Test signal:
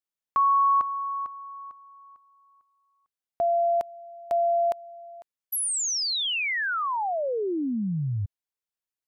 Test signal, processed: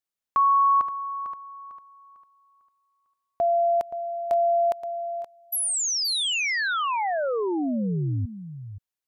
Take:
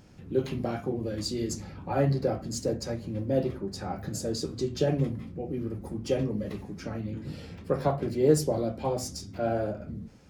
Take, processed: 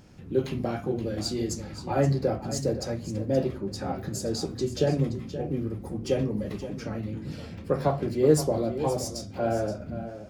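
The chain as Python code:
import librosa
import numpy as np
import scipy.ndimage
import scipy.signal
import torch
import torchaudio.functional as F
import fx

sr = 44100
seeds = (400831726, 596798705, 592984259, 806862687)

y = x + 10.0 ** (-12.0 / 20.0) * np.pad(x, (int(524 * sr / 1000.0), 0))[:len(x)]
y = y * librosa.db_to_amplitude(1.5)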